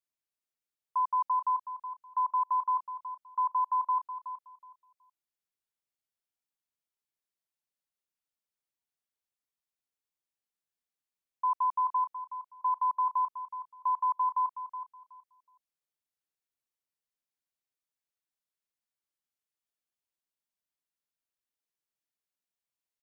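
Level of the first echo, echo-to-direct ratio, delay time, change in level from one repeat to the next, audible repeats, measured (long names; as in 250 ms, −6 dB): −11.0 dB, −11.0 dB, 371 ms, −13.5 dB, 2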